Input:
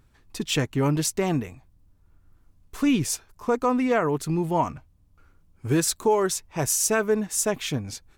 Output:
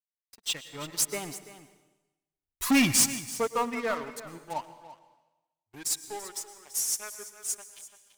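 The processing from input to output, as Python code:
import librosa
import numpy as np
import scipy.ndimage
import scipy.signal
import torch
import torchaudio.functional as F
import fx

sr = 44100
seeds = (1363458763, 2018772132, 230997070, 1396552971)

y = fx.bin_expand(x, sr, power=1.5)
y = fx.doppler_pass(y, sr, speed_mps=17, closest_m=1.1, pass_at_s=2.49)
y = fx.tilt_eq(y, sr, slope=3.5)
y = fx.leveller(y, sr, passes=5)
y = y + 10.0 ** (-11.0 / 20.0) * np.pad(y, (int(337 * sr / 1000.0), 0))[:len(y)]
y = fx.rev_plate(y, sr, seeds[0], rt60_s=1.0, hf_ratio=1.0, predelay_ms=95, drr_db=10.0)
y = fx.upward_expand(y, sr, threshold_db=-44.0, expansion=1.5)
y = y * 10.0 ** (8.5 / 20.0)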